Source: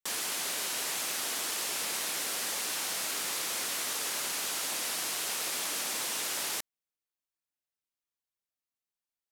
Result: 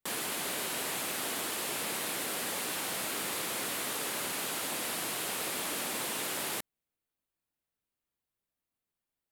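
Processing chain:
low-shelf EQ 500 Hz +9 dB
in parallel at 0 dB: brickwall limiter −31 dBFS, peak gain reduction 10 dB
on the sum: parametric band 5,800 Hz −7 dB 0.79 octaves
level −3.5 dB

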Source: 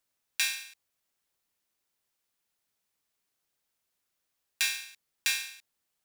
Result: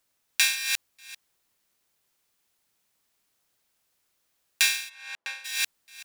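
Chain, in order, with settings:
delay that plays each chunk backwards 287 ms, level −5.5 dB
0:04.88–0:05.44: resonant band-pass 1,000 Hz → 480 Hz, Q 0.98
level +6.5 dB

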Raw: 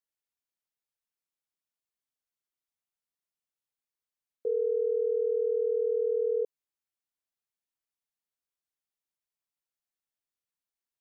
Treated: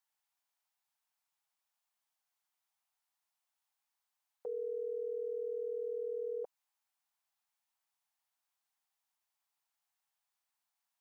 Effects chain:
low shelf with overshoot 580 Hz −11 dB, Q 3
level +4.5 dB

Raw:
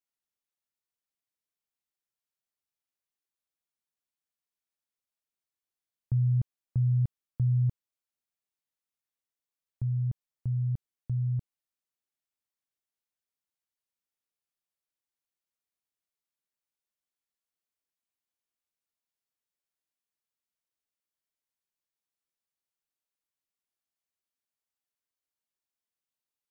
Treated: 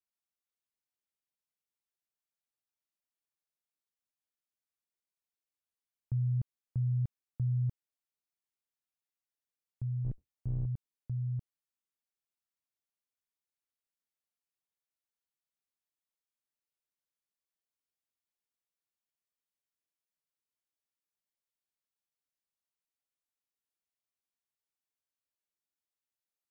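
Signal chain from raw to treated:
0:10.04–0:10.66: sub-octave generator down 2 octaves, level −4 dB
level −5.5 dB

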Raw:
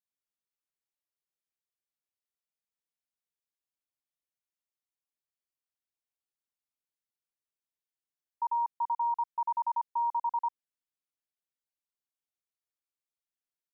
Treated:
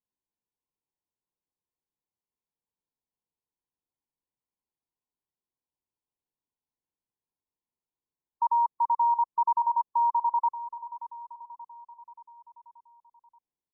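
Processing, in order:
linear-phase brick-wall low-pass 1,100 Hz
parametric band 630 Hz −10 dB 0.39 octaves
on a send: repeating echo 580 ms, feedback 54%, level −13.5 dB
on the sum: level +7 dB

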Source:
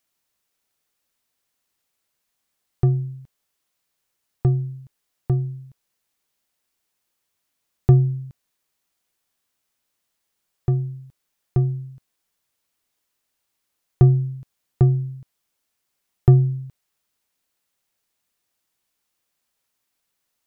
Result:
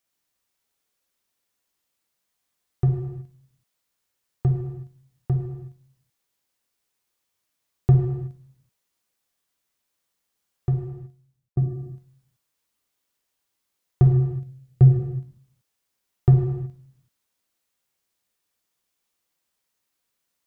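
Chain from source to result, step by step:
0:10.71–0:11.57: fade out
0:14.12–0:14.99: thirty-one-band graphic EQ 125 Hz +7 dB, 500 Hz +6 dB, 1,000 Hz −11 dB
reverb whose tail is shaped and stops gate 400 ms falling, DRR 0.5 dB
level −4.5 dB

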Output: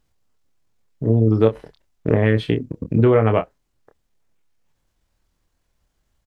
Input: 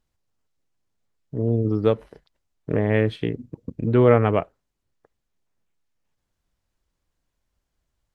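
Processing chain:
downward compressor 6 to 1, threshold −18 dBFS, peak gain reduction 8.5 dB
tempo change 1.3×
double-tracking delay 27 ms −7 dB
level +6.5 dB

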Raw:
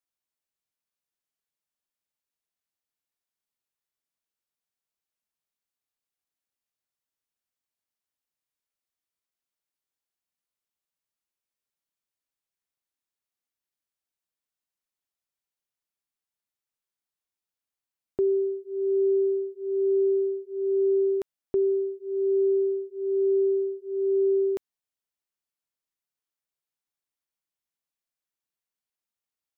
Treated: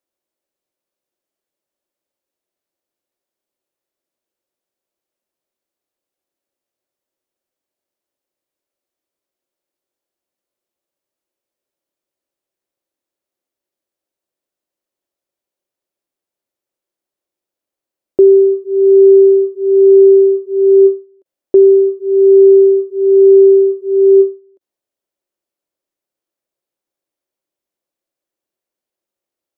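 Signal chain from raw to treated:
hollow resonant body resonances 360/540 Hz, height 15 dB, ringing for 25 ms
every ending faded ahead of time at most 200 dB per second
level +3.5 dB

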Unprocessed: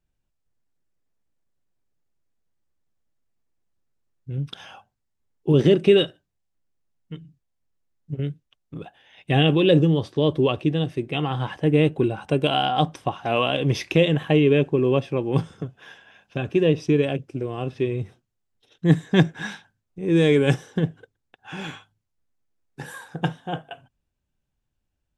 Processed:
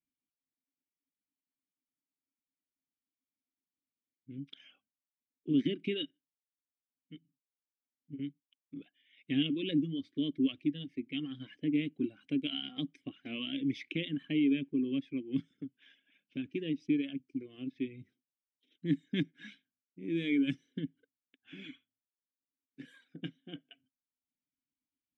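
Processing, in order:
formant filter i
dynamic equaliser 470 Hz, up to −5 dB, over −47 dBFS, Q 1.9
reverb reduction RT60 0.76 s

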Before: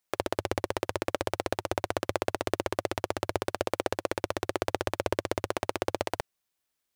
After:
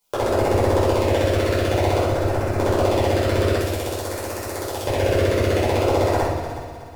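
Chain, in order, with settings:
0:03.57–0:04.83: first-order pre-emphasis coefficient 0.8
in parallel at +2 dB: brickwall limiter −18.5 dBFS, peak gain reduction 10 dB
0:02.01–0:02.59: on the sum: hard clipping −22.5 dBFS, distortion −12 dB
auto-filter notch sine 0.52 Hz 770–3,500 Hz
soft clipping −12.5 dBFS, distortion −15 dB
on a send: echo machine with several playback heads 122 ms, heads second and third, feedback 43%, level −13 dB
on the sum: rectangular room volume 380 cubic metres, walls mixed, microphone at 4.9 metres
level −1.5 dB

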